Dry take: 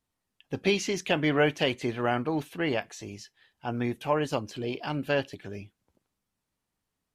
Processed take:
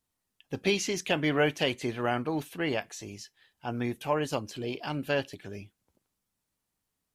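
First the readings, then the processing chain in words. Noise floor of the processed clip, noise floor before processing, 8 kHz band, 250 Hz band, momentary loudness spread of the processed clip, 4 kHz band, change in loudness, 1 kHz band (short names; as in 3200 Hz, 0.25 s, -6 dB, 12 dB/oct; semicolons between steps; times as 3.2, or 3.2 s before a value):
-83 dBFS, -84 dBFS, +2.0 dB, -2.0 dB, 16 LU, -0.5 dB, -1.5 dB, -2.0 dB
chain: high shelf 6000 Hz +7.5 dB; gain -2 dB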